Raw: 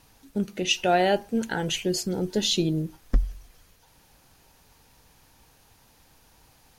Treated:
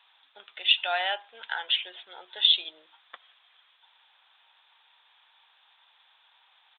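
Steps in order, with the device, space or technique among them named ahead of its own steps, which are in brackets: musical greeting card (resampled via 8 kHz; high-pass 870 Hz 24 dB/octave; peaking EQ 3.5 kHz +11.5 dB 0.28 oct)

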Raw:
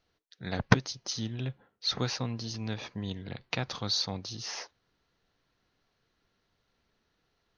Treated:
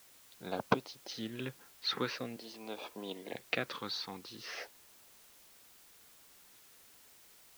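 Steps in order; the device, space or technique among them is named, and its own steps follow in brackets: 2.36–3.33 s: high-pass 280 Hz 12 dB/octave; shortwave radio (band-pass 320–2700 Hz; tremolo 0.61 Hz, depth 48%; LFO notch sine 0.43 Hz 590–1900 Hz; white noise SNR 18 dB); trim +4.5 dB

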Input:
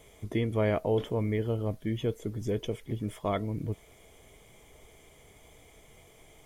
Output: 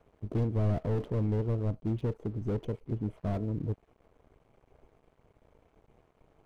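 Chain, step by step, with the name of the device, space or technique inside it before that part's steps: local Wiener filter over 25 samples; early transistor amplifier (crossover distortion -58.5 dBFS; slew-rate limiter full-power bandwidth 11 Hz); trim +1 dB

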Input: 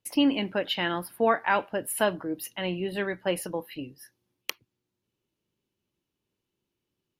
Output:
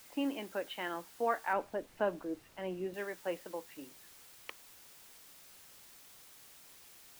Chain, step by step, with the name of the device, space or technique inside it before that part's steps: wax cylinder (band-pass 310–2100 Hz; wow and flutter; white noise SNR 16 dB); 1.53–2.94 s: tilt EQ -2.5 dB/octave; trim -8.5 dB

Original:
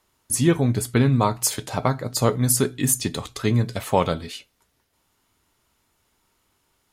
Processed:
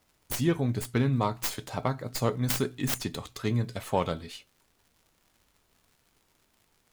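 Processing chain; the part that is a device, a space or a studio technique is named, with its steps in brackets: record under a worn stylus (tracing distortion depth 0.17 ms; crackle 130 per s -43 dBFS; pink noise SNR 40 dB); trim -7.5 dB

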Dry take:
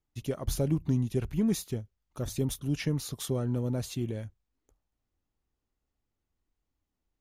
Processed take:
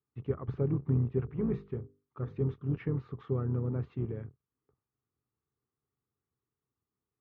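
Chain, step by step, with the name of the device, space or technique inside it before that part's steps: sub-octave bass pedal (octave divider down 2 oct, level +2 dB; cabinet simulation 78–2100 Hz, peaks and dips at 130 Hz +8 dB, 420 Hz +9 dB, 610 Hz -7 dB, 1.2 kHz +9 dB); 1.21–2.54 s: hum notches 50/100/150/200/250/300/350/400/450/500 Hz; trim -6.5 dB

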